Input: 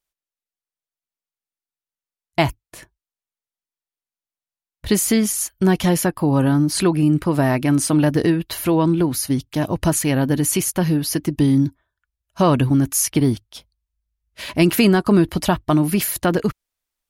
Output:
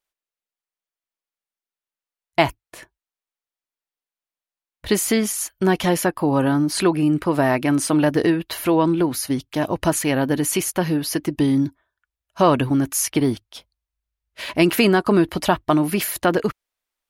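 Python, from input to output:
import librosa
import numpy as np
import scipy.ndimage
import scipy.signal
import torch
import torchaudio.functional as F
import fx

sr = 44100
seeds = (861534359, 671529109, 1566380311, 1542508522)

y = fx.bass_treble(x, sr, bass_db=-9, treble_db=-5)
y = y * librosa.db_to_amplitude(2.0)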